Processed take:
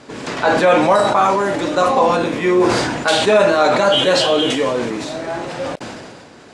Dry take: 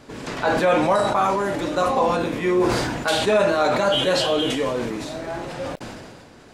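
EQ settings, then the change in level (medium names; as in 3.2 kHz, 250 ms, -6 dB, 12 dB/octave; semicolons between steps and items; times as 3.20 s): high-pass 160 Hz 6 dB/octave; low-pass 9.7 kHz 24 dB/octave; +6.0 dB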